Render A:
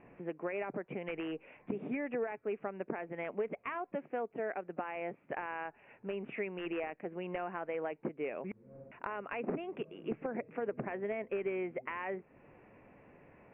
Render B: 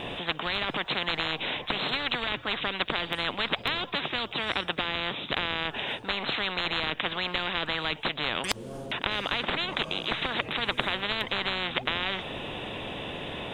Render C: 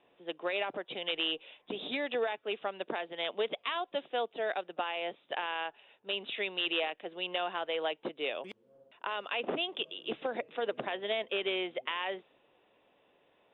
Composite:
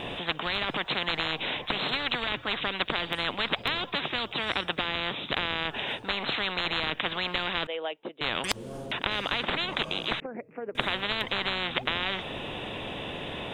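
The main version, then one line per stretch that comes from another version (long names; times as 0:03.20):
B
0:07.67–0:08.21: punch in from C
0:10.20–0:10.75: punch in from A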